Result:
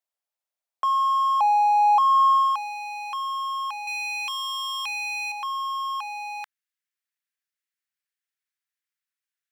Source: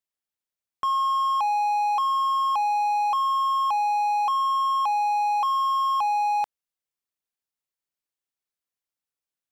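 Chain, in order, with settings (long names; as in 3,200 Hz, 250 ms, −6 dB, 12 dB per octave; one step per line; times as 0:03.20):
0:03.87–0:05.32: power curve on the samples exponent 3
high-pass filter sweep 640 Hz → 1,700 Hz, 0:01.73–0:02.77
level −1.5 dB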